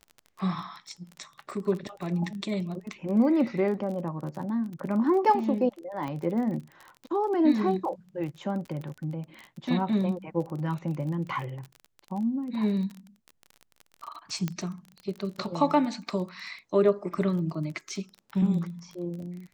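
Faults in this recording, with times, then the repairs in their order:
crackle 26 per s -35 dBFS
6.08 s: pop -23 dBFS
14.48 s: pop -17 dBFS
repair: de-click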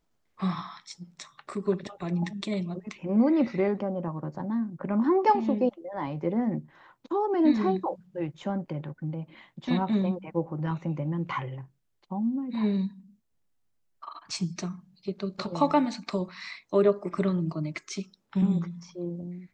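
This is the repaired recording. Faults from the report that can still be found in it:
6.08 s: pop

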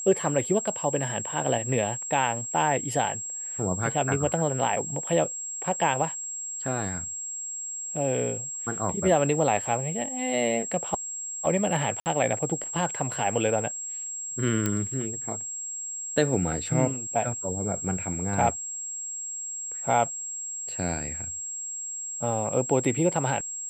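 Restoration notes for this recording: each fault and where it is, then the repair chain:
whine 7.6 kHz -32 dBFS
12.00–12.06 s: dropout 59 ms
14.66 s: pop -11 dBFS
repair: de-click; band-stop 7.6 kHz, Q 30; interpolate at 12.00 s, 59 ms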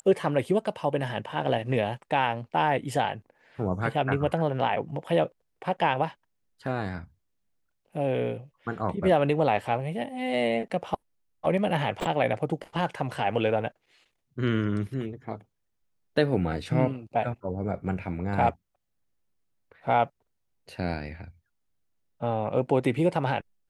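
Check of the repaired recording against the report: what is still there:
nothing left

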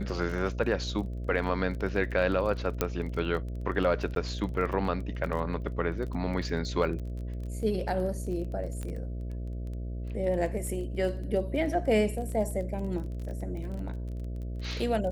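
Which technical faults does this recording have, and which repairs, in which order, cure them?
buzz 60 Hz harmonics 11 -35 dBFS
crackle 20 per s -36 dBFS
2.81 s: pop -11 dBFS
4.15–4.16 s: dropout 12 ms
8.83 s: pop -24 dBFS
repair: de-click; de-hum 60 Hz, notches 11; interpolate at 4.15 s, 12 ms

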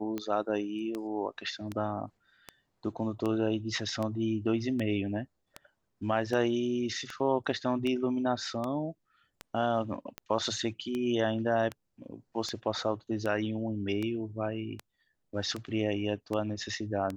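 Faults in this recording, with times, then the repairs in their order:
tick 78 rpm -21 dBFS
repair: de-click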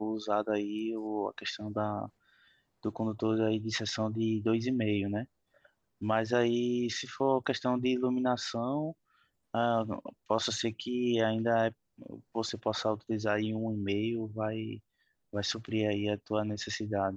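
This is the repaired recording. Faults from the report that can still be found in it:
nothing left

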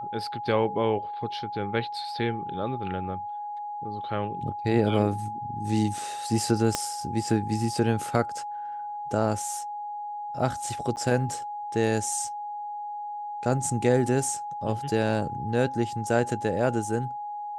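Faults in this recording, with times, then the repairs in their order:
whine 830 Hz -32 dBFS
6.75 s: pop -9 dBFS
10.96–10.97 s: dropout 9.3 ms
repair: de-click; band-stop 830 Hz, Q 30; interpolate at 10.96 s, 9.3 ms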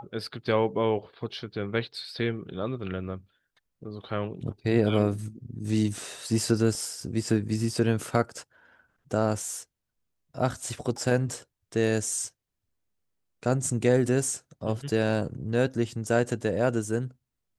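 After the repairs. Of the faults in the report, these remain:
6.75 s: pop

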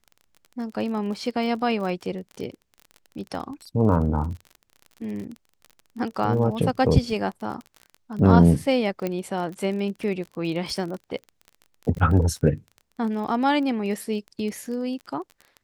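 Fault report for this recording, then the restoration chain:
crackle 32 per s -32 dBFS
9.07 s: pop -14 dBFS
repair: de-click

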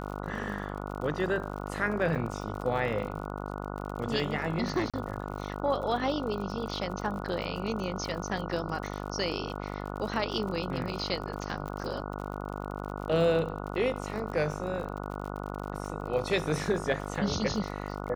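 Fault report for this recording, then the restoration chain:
buzz 50 Hz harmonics 29 -37 dBFS
crackle 52 per s -37 dBFS
2.15–2.16 s: dropout 5.9 ms
4.90–4.94 s: dropout 36 ms
11.68 s: pop -25 dBFS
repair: de-click; de-hum 50 Hz, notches 29; interpolate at 2.15 s, 5.9 ms; interpolate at 4.90 s, 36 ms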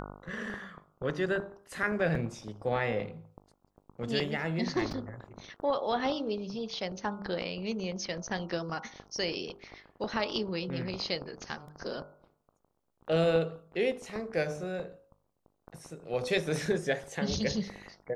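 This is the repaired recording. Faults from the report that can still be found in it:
11.68 s: pop

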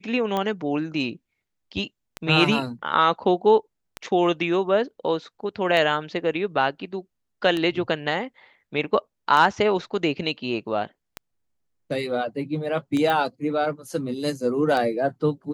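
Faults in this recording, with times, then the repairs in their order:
tick 33 1/3 rpm -13 dBFS
13.10 s: pop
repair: de-click

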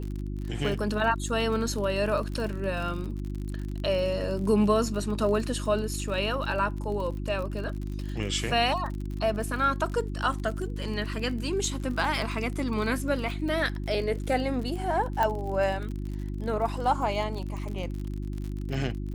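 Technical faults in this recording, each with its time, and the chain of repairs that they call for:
crackle 47 per s -34 dBFS
hum 50 Hz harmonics 7 -33 dBFS
15.23 s: pop -14 dBFS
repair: de-click; de-hum 50 Hz, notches 7

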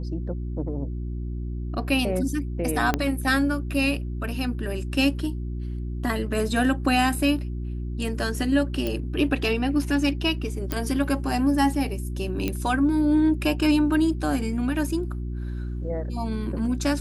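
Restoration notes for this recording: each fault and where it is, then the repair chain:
hum 60 Hz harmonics 6 -30 dBFS
2.94 s: pop -8 dBFS
8.87 s: pop -14 dBFS
10.72 s: pop -11 dBFS
12.48 s: pop -12 dBFS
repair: de-click; de-hum 60 Hz, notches 6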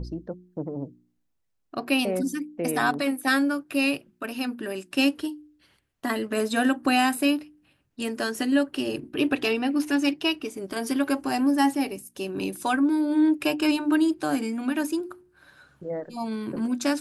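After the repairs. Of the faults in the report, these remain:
2.94 s: pop

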